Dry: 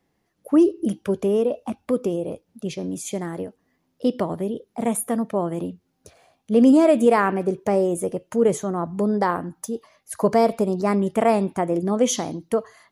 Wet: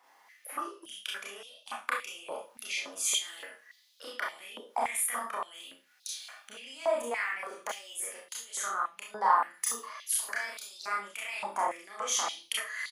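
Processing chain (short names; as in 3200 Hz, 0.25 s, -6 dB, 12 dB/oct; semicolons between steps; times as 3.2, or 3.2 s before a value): limiter -16 dBFS, peak gain reduction 10 dB; compressor 10:1, threshold -35 dBFS, peak gain reduction 16 dB; doubler 30 ms -4.5 dB; Schroeder reverb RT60 0.31 s, combs from 26 ms, DRR -2.5 dB; stepped high-pass 3.5 Hz 960–3800 Hz; gain +5.5 dB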